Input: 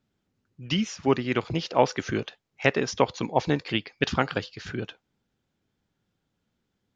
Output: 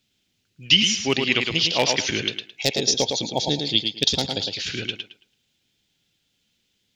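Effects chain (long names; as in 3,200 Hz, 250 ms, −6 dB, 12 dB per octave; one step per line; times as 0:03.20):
hard clipping −8.5 dBFS, distortion −22 dB
gain on a spectral selection 0:02.62–0:04.48, 930–3,200 Hz −15 dB
high shelf with overshoot 1,900 Hz +14 dB, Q 1.5
on a send: tape delay 109 ms, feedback 25%, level −4 dB, low-pass 5,000 Hz
on the sum: level −1 dB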